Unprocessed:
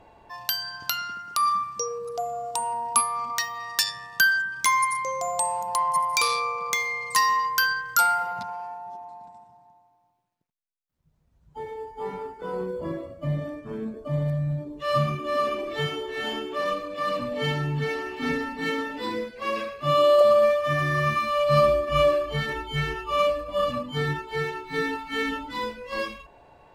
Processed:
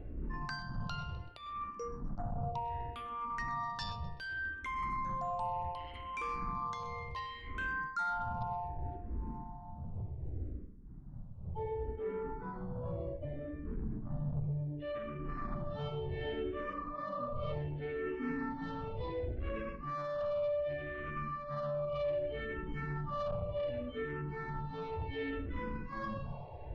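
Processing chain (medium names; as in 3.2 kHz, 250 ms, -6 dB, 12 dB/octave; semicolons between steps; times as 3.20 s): wind noise 100 Hz -31 dBFS; tape spacing loss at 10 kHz 38 dB; feedback echo behind a high-pass 127 ms, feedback 57%, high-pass 2 kHz, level -20 dB; on a send at -11 dB: reverberation RT60 0.40 s, pre-delay 95 ms; on the sum: gain riding within 3 dB 2 s; hum notches 50/100/150 Hz; saturation -21 dBFS, distortion -12 dB; spectral replace 16.72–17.50 s, 450–1300 Hz before; reverse; compression 6:1, threshold -37 dBFS, peak gain reduction 15 dB; reverse; barber-pole phaser -0.67 Hz; trim +3.5 dB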